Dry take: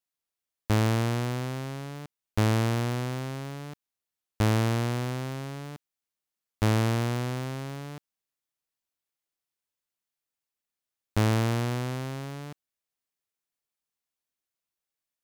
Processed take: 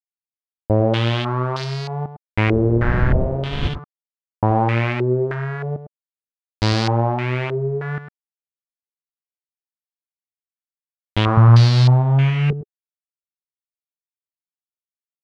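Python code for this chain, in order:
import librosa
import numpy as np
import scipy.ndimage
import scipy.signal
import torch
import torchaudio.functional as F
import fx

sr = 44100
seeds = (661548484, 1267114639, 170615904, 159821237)

y = x + 0.5 * 10.0 ** (-31.0 / 20.0) * np.sign(x)
y = fx.dmg_wind(y, sr, seeds[0], corner_hz=100.0, level_db=-26.0, at=(2.51, 3.67), fade=0.02)
y = fx.low_shelf_res(y, sr, hz=210.0, db=9.5, q=1.5, at=(11.37, 12.51))
y = fx.quant_dither(y, sr, seeds[1], bits=6, dither='none')
y = y + 10.0 ** (-10.5 / 20.0) * np.pad(y, (int(104 * sr / 1000.0), 0))[:len(y)]
y = fx.buffer_glitch(y, sr, at_s=(3.87,), block=2048, repeats=11)
y = fx.filter_held_lowpass(y, sr, hz=3.2, low_hz=420.0, high_hz=4600.0)
y = F.gain(torch.from_numpy(y), 4.0).numpy()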